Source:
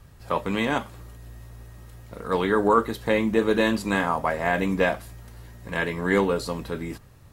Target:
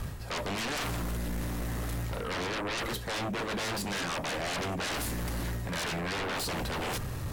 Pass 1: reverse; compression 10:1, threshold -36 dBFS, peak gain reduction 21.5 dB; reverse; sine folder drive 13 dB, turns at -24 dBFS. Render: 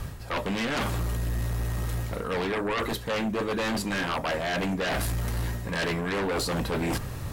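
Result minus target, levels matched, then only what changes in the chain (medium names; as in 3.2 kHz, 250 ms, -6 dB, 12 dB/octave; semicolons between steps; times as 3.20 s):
sine folder: distortion -10 dB
change: sine folder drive 13 dB, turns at -30 dBFS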